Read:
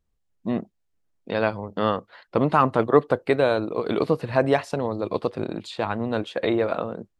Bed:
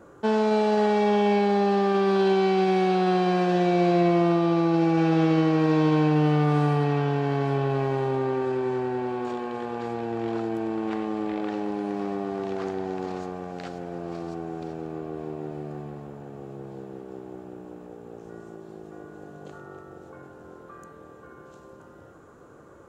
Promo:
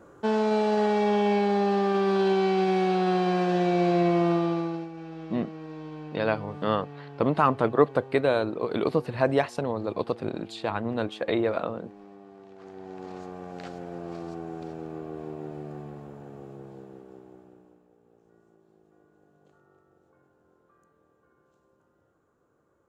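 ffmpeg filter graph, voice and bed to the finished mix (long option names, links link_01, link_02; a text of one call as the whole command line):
ffmpeg -i stem1.wav -i stem2.wav -filter_complex "[0:a]adelay=4850,volume=-3dB[link_01];[1:a]volume=14dB,afade=type=out:start_time=4.36:duration=0.53:silence=0.141254,afade=type=in:start_time=12.56:duration=1.07:silence=0.158489,afade=type=out:start_time=16.33:duration=1.51:silence=0.149624[link_02];[link_01][link_02]amix=inputs=2:normalize=0" out.wav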